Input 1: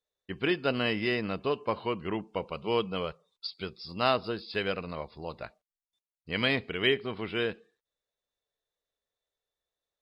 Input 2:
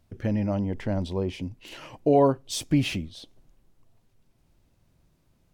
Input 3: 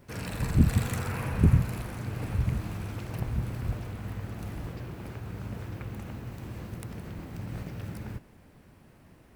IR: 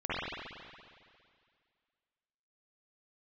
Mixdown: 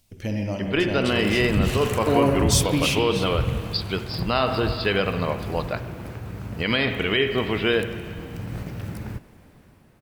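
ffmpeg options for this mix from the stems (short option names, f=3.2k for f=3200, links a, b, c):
-filter_complex "[0:a]adelay=300,volume=1.5dB,asplit=2[a][b];[b]volume=-12dB[c];[1:a]aexciter=amount=2.3:drive=8.2:freq=2.2k,volume=-3.5dB,asplit=2[d][e];[e]volume=-11dB[f];[2:a]adelay=1000,volume=-5dB[g];[a][g]amix=inputs=2:normalize=0,dynaudnorm=f=210:g=9:m=10.5dB,alimiter=limit=-12.5dB:level=0:latency=1:release=62,volume=0dB[h];[3:a]atrim=start_sample=2205[i];[c][f]amix=inputs=2:normalize=0[j];[j][i]afir=irnorm=-1:irlink=0[k];[d][h][k]amix=inputs=3:normalize=0"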